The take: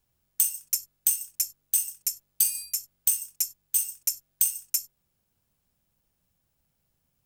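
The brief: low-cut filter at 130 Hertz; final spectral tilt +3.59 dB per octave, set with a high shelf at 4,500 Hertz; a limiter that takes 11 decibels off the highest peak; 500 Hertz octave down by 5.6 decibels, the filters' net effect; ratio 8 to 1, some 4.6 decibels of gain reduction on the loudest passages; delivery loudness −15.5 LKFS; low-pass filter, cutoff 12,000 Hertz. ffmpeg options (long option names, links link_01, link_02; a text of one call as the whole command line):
ffmpeg -i in.wav -af "highpass=130,lowpass=12000,equalizer=frequency=500:width_type=o:gain=-7.5,highshelf=frequency=4500:gain=-3,acompressor=threshold=-28dB:ratio=8,volume=23.5dB,alimiter=limit=-2dB:level=0:latency=1" out.wav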